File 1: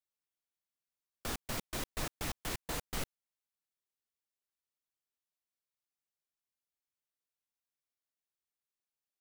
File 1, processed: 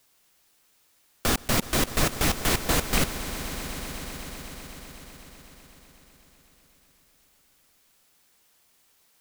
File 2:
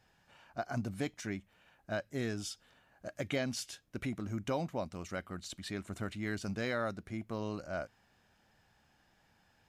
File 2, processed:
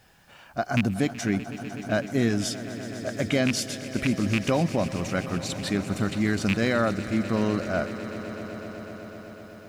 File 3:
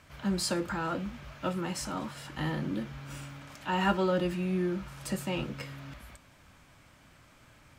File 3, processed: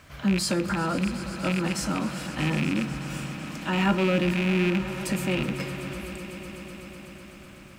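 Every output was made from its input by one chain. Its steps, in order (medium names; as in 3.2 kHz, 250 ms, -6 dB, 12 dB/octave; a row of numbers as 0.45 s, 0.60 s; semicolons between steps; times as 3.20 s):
rattle on loud lows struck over -34 dBFS, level -22 dBFS; band-stop 900 Hz, Q 15; dynamic bell 210 Hz, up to +5 dB, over -45 dBFS, Q 1.1; in parallel at +2.5 dB: peak limiter -26.5 dBFS; on the sum: word length cut 12-bit, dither triangular; on a send: echo with a slow build-up 125 ms, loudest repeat 5, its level -17 dB; on the sum: normalise loudness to -27 LUFS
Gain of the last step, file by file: +7.5 dB, +3.5 dB, -1.5 dB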